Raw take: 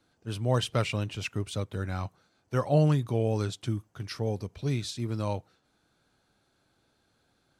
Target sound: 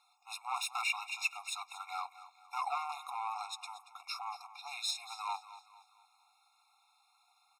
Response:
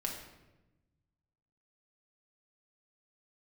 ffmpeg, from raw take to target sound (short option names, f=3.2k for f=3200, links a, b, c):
-filter_complex "[0:a]asettb=1/sr,asplit=3[a][b][c];[a]atrim=end=3.104[d];[b]atrim=start=3.1:end=4.58,asetpts=PTS-STARTPTS,afade=t=in:d=0.004:c=qsin,afade=t=out:st=1.476:d=0.004:c=qsin,tiltshelf=f=1.2k:g=4[e];[c]atrim=start=4.576[f];[d][e]acrossfade=d=0.004:c1=hsin:c2=qsin[g];[g][f]acrossfade=d=0.004:c1=qsin:c2=hsin,asoftclip=type=tanh:threshold=-29dB,aecho=1:1:231|462|693|924:0.178|0.0729|0.0299|0.0123,afftfilt=real='re*eq(mod(floor(b*sr/1024/710),2),1)':imag='im*eq(mod(floor(b*sr/1024/710),2),1)':win_size=1024:overlap=0.75,volume=6dB"